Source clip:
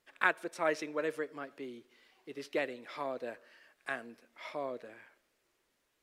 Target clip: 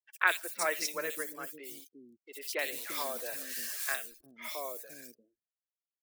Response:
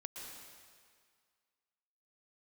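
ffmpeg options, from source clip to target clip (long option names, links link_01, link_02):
-filter_complex "[0:a]asettb=1/sr,asplit=3[link_01][link_02][link_03];[link_01]atrim=end=2.664[link_04];[link_02]atrim=start=2.66:end=3.9,asetpts=PTS-STARTPTS,afade=type=in:duration=0.004:curve=qsin,afade=type=out:start_time=1.236:duration=0.004:curve=qsin,aeval=exprs='val(0)+0.5*0.00473*sgn(val(0))':channel_layout=same[link_05];[link_03]atrim=start=3.896[link_06];[link_04][link_05]acrossfade=duration=0.004:curve1=hsin:curve2=qsin[link_07];[link_07][link_06]acrossfade=duration=0.004:curve1=qsin:curve2=hsin,acrusher=bits=8:mix=0:aa=0.000001,crystalizer=i=9.5:c=0,afftdn=noise_reduction=27:noise_floor=-43,acrossover=split=310|2800[link_08][link_09][link_10];[link_10]adelay=60[link_11];[link_08]adelay=350[link_12];[link_12][link_09][link_11]amix=inputs=3:normalize=0,volume=-4.5dB"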